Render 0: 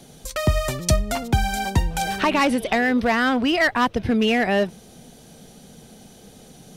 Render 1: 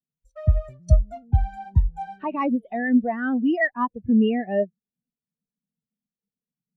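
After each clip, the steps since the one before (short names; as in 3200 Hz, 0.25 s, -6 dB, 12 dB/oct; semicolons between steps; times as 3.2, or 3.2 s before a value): high shelf 5100 Hz +4.5 dB; spectral expander 2.5:1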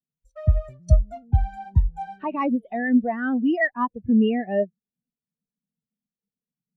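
nothing audible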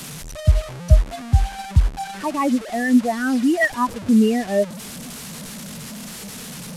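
delta modulation 64 kbps, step -31 dBFS; gain +3.5 dB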